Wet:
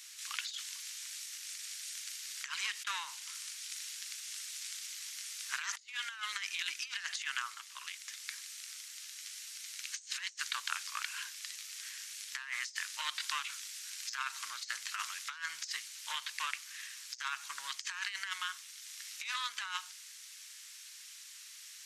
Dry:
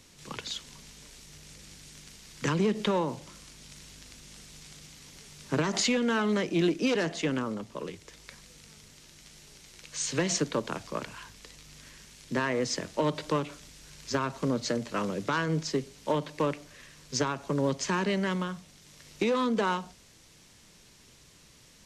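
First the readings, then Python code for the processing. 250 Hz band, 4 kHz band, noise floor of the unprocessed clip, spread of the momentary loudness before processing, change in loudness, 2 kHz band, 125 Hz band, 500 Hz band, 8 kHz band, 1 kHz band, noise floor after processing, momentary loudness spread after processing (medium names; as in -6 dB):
under -40 dB, -1.0 dB, -57 dBFS, 22 LU, -9.5 dB, -2.5 dB, under -40 dB, under -40 dB, -1.5 dB, -9.5 dB, -52 dBFS, 8 LU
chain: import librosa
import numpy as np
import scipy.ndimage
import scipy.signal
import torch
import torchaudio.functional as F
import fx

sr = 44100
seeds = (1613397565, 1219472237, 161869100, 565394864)

y = scipy.signal.sosfilt(scipy.signal.cheby2(4, 50, 550.0, 'highpass', fs=sr, output='sos'), x)
y = fx.high_shelf(y, sr, hz=7100.0, db=7.5)
y = fx.over_compress(y, sr, threshold_db=-39.0, ratio=-0.5)
y = y * librosa.db_to_amplitude(1.0)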